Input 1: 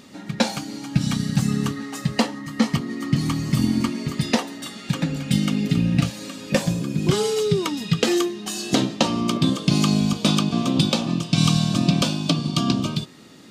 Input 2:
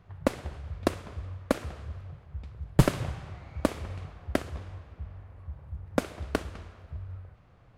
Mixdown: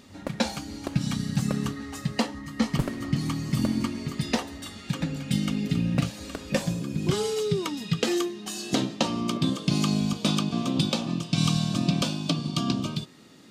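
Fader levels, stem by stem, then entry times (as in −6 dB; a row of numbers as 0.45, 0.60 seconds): −5.5, −8.5 decibels; 0.00, 0.00 seconds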